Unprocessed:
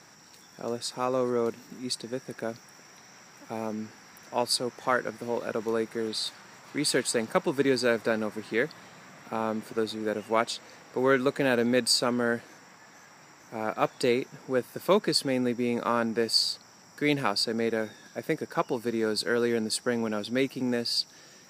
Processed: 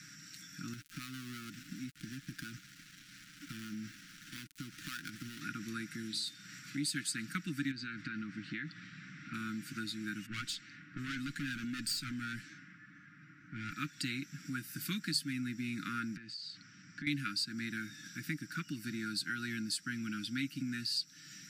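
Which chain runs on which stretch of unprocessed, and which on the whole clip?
0.73–5.41 s: dead-time distortion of 0.17 ms + compression 4:1, threshold -34 dBFS
5.94–6.97 s: de-hum 106.8 Hz, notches 34 + dynamic bell 1.5 kHz, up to -6 dB, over -49 dBFS, Q 0.8
7.71–9.34 s: compression 5:1, threshold -27 dBFS + distance through air 170 m
10.26–13.72 s: level-controlled noise filter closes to 1.4 kHz, open at -24 dBFS + valve stage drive 26 dB, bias 0.3
14.45–15.33 s: treble shelf 6.6 kHz +5.5 dB + hum notches 50/100/150 Hz
16.16–17.07 s: compression 5:1, threshold -38 dBFS + distance through air 160 m
whole clip: Chebyshev band-stop 290–1400 Hz, order 4; comb 6.3 ms, depth 42%; compression 2:1, threshold -43 dBFS; trim +2 dB

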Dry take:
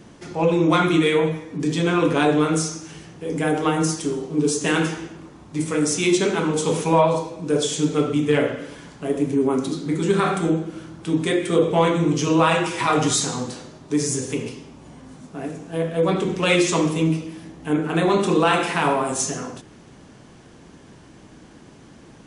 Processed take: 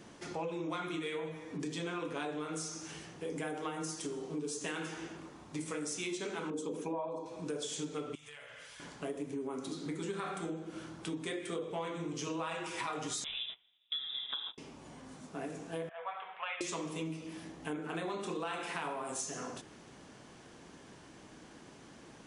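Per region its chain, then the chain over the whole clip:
6.50–7.26 s: resonances exaggerated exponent 1.5 + small resonant body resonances 280/1600 Hz, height 10 dB
8.15–8.80 s: amplifier tone stack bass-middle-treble 10-0-10 + compression 12:1, threshold -41 dBFS
13.24–14.58 s: gate -33 dBFS, range -26 dB + frequency inversion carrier 3.7 kHz
15.89–16.61 s: elliptic band-pass 720–3300 Hz + distance through air 430 m
whole clip: bass shelf 260 Hz -9 dB; compression 6:1, threshold -32 dBFS; trim -4.5 dB

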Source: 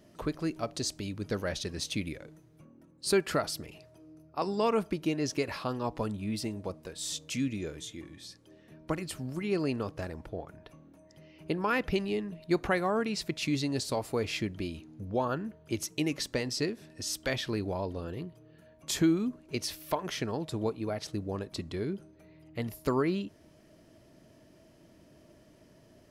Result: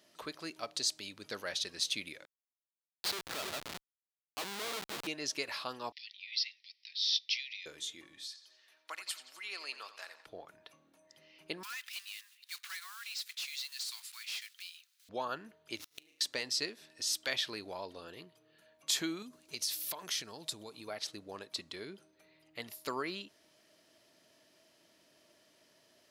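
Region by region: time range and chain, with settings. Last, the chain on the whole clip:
2.25–5.07 s: backward echo that repeats 153 ms, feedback 44%, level -7 dB + low-pass that closes with the level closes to 1.4 kHz, closed at -23 dBFS + Schmitt trigger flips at -34 dBFS
5.92–7.66 s: Chebyshev band-pass 1.9–5.5 kHz, order 5 + tilt EQ +3 dB/octave
8.24–10.26 s: high-pass 1 kHz + bucket-brigade echo 87 ms, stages 4096, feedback 53%, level -12.5 dB
11.63–15.09 s: block-companded coder 5-bit + Bessel high-pass 2.2 kHz, order 8 + hard clipper -38.5 dBFS
15.76–16.21 s: dead-time distortion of 0.066 ms + flutter echo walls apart 6.1 m, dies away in 0.62 s + inverted gate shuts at -29 dBFS, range -30 dB
19.22–20.88 s: tone controls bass +6 dB, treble +10 dB + compression, threshold -32 dBFS
whole clip: high-pass 1.4 kHz 6 dB/octave; peaking EQ 3.9 kHz +5 dB 0.72 oct

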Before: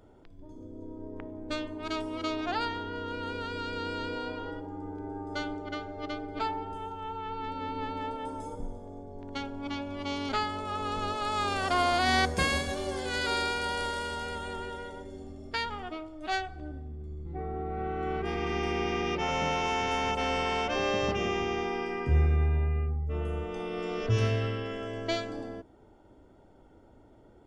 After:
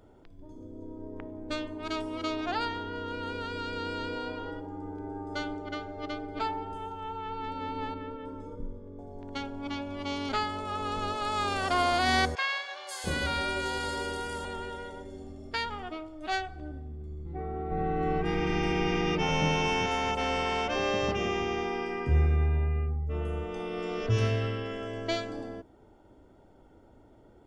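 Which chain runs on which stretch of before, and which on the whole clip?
7.94–8.99 s: Butterworth band-stop 750 Hz, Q 2 + tape spacing loss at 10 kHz 25 dB
12.35–14.45 s: hum notches 60/120/180/240/300/360/420/480 Hz + three bands offset in time mids, highs, lows 520/690 ms, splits 710/4900 Hz
17.71–19.86 s: bass shelf 240 Hz +8.5 dB + comb 6.4 ms, depth 59%
whole clip: none

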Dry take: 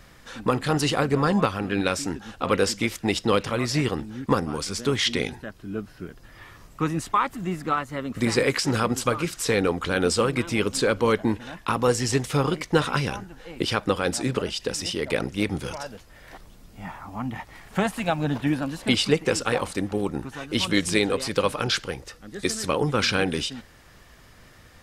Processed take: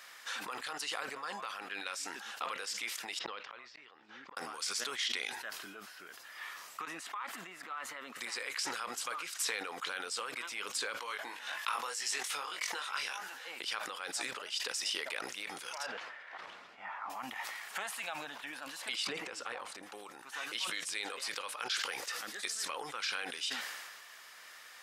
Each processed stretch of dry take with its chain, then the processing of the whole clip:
3.19–4.37 s: Gaussian low-pass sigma 2 samples + inverted gate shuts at -17 dBFS, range -41 dB
6.85–8.16 s: high-pass 190 Hz + tone controls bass +5 dB, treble -7 dB + compression 12:1, threshold -35 dBFS
10.97–13.34 s: peaking EQ 130 Hz -10.5 dB 3 oct + doubling 21 ms -5 dB
15.86–17.10 s: low-pass 2.2 kHz + gate -47 dBFS, range -7 dB + upward compressor, threshold -41 dBFS
19.07–19.83 s: tilt EQ -3 dB/octave + compression, threshold -25 dBFS
whole clip: compression 12:1, threshold -34 dBFS; high-pass 1.1 kHz 12 dB/octave; decay stretcher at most 33 dB/s; trim +2.5 dB

